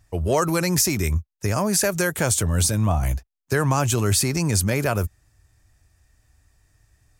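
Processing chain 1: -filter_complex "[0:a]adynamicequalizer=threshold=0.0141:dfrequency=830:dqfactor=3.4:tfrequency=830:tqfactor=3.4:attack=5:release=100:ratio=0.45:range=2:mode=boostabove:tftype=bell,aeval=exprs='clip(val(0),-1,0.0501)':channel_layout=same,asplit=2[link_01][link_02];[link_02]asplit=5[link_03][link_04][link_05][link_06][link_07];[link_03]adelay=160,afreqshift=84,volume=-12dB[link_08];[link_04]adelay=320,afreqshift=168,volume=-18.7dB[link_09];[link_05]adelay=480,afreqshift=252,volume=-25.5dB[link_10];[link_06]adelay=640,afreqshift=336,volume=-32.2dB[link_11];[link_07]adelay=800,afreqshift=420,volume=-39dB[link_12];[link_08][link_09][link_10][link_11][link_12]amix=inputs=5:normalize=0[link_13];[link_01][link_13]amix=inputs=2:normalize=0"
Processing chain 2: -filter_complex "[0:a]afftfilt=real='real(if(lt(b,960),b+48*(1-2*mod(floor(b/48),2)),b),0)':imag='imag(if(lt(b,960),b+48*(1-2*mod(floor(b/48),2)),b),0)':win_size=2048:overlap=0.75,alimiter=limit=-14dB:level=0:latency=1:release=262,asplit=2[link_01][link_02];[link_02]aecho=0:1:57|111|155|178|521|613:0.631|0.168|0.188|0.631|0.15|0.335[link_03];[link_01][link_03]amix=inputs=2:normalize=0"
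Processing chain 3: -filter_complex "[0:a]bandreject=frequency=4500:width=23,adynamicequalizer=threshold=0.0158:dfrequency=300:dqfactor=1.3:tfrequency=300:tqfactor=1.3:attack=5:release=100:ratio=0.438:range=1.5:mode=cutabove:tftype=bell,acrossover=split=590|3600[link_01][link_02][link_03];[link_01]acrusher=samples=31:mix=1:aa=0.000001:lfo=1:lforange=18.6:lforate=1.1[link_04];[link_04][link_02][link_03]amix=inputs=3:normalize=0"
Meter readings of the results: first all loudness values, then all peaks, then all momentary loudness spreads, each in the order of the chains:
−24.0, −21.0, −22.0 LKFS; −7.5, −9.0, −7.5 dBFS; 7, 8, 6 LU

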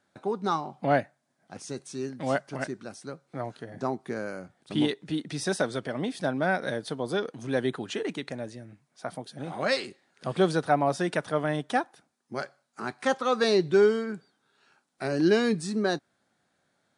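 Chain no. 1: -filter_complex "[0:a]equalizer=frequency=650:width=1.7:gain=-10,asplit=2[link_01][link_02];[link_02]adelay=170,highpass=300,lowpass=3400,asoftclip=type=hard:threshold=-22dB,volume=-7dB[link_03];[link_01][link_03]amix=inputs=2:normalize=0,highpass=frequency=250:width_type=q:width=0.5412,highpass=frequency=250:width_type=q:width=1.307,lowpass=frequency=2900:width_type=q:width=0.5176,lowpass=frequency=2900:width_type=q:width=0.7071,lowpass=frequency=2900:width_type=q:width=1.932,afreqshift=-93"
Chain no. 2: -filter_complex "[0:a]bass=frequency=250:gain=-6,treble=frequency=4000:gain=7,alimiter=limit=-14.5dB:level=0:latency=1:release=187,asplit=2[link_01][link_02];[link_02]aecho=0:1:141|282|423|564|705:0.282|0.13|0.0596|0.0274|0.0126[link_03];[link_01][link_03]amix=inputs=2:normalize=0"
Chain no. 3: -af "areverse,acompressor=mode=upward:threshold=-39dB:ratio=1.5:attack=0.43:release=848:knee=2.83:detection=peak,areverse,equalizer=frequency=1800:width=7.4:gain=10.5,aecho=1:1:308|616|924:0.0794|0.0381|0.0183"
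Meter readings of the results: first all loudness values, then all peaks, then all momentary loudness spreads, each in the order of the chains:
−32.5, −30.0, −28.0 LKFS; −13.0, −13.5, −9.0 dBFS; 17, 14, 17 LU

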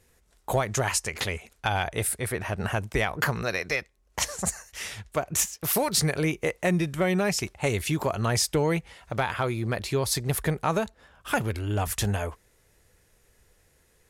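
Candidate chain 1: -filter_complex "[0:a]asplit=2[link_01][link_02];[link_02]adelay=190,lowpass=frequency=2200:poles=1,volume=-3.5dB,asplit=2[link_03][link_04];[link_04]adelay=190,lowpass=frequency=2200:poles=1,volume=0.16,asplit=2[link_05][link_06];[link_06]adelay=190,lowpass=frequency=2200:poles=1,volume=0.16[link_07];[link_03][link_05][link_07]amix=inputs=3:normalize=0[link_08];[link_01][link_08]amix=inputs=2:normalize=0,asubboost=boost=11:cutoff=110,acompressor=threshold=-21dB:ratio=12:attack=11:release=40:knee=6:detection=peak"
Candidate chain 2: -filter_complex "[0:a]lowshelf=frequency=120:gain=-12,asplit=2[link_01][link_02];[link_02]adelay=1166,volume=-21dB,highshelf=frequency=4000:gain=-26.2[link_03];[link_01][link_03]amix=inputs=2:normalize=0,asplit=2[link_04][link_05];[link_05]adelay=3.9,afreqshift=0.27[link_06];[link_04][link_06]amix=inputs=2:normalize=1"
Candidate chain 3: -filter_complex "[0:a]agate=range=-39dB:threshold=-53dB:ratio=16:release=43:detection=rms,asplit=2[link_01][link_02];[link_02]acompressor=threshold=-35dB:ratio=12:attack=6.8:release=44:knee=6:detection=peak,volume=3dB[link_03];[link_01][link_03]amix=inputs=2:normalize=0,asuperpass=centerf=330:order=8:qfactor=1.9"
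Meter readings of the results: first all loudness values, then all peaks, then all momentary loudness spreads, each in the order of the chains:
−25.5, −32.0, −34.0 LKFS; −11.5, −13.0, −16.5 dBFS; 7, 7, 13 LU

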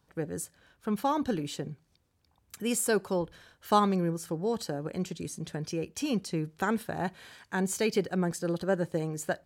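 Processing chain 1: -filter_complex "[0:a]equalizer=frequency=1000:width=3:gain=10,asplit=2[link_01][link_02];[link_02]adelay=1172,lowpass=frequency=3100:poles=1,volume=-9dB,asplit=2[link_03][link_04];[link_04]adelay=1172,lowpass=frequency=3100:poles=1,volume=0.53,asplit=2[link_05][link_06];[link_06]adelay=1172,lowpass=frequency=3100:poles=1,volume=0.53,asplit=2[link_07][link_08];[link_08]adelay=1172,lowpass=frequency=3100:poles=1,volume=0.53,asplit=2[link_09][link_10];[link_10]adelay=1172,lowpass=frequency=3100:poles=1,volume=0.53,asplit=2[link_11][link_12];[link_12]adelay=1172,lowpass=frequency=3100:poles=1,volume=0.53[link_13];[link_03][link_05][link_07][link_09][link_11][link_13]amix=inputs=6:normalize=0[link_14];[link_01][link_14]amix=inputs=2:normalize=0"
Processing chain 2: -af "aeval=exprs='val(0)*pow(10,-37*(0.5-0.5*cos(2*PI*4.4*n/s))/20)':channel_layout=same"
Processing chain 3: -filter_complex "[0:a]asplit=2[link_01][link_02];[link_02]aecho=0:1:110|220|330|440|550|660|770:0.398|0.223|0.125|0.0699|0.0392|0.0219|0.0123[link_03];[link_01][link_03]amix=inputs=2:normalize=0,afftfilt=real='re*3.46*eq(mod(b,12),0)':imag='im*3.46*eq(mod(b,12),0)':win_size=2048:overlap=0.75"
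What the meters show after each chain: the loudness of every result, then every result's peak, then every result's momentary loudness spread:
−29.0, −38.0, −33.5 LKFS; −7.0, −17.5, −14.5 dBFS; 12, 14, 14 LU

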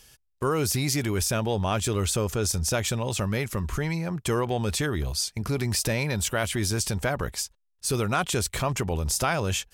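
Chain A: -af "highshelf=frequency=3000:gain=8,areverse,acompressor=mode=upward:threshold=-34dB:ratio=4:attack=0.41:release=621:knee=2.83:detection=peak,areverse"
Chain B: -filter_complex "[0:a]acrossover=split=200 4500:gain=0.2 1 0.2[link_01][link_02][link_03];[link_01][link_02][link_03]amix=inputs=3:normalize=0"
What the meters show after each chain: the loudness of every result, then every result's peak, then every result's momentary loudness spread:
−23.5, −30.0 LKFS; −7.0, −11.0 dBFS; 7, 6 LU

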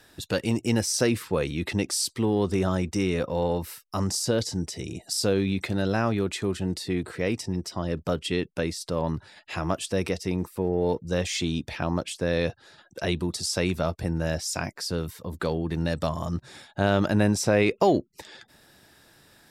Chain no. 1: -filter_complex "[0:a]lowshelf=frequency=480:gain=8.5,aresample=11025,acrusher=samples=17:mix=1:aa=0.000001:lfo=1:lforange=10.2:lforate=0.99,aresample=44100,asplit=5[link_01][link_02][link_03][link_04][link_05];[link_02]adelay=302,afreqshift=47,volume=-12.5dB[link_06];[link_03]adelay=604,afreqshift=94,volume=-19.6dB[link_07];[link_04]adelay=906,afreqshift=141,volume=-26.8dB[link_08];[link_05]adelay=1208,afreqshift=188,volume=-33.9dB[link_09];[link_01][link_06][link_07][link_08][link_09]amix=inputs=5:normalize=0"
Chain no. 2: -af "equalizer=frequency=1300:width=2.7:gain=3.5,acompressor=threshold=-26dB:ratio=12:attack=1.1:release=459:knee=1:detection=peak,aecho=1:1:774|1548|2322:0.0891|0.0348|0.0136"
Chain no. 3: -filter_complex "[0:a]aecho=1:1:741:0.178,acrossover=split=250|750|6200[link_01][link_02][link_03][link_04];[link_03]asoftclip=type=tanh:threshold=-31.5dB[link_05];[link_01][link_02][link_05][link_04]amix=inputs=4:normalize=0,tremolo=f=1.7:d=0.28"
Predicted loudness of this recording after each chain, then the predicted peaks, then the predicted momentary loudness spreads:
−22.0, −35.5, −29.0 LKFS; −1.5, −18.0, −11.0 dBFS; 10, 7, 9 LU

